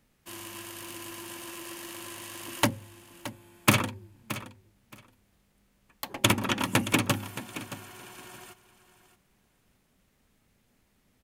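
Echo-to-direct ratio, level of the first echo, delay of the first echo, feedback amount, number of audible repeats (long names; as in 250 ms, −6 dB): −14.0 dB, −14.0 dB, 622 ms, 17%, 2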